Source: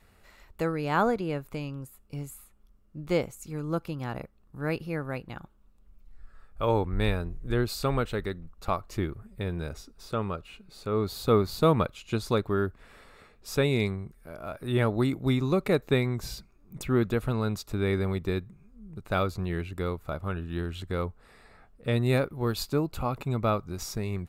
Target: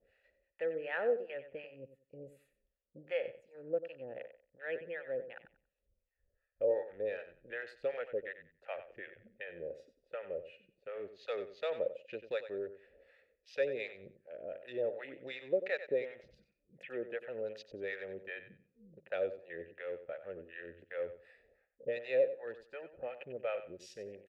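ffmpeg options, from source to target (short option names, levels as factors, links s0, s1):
-filter_complex "[0:a]acrossover=split=470[s0][s1];[s0]acompressor=threshold=0.0141:ratio=4[s2];[s2][s1]amix=inputs=2:normalize=0,afwtdn=0.00631,areverse,acompressor=mode=upward:threshold=0.0224:ratio=2.5,areverse,acrossover=split=680[s3][s4];[s3]aeval=exprs='val(0)*(1-1/2+1/2*cos(2*PI*2.7*n/s))':c=same[s5];[s4]aeval=exprs='val(0)*(1-1/2-1/2*cos(2*PI*2.7*n/s))':c=same[s6];[s5][s6]amix=inputs=2:normalize=0,asplit=3[s7][s8][s9];[s7]bandpass=f=530:t=q:w=8,volume=1[s10];[s8]bandpass=f=1840:t=q:w=8,volume=0.501[s11];[s9]bandpass=f=2480:t=q:w=8,volume=0.355[s12];[s10][s11][s12]amix=inputs=3:normalize=0,asplit=2[s13][s14];[s14]aecho=0:1:93|186|279:0.251|0.0527|0.0111[s15];[s13][s15]amix=inputs=2:normalize=0,volume=2.82"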